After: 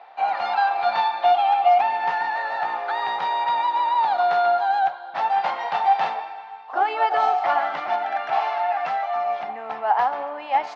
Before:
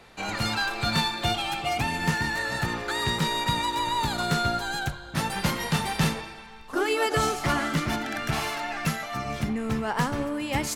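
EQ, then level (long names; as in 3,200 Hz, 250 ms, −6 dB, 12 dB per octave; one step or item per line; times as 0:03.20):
high-pass with resonance 760 Hz, resonance Q 8.5
low-pass filter 5,800 Hz 12 dB per octave
high-frequency loss of the air 260 metres
0.0 dB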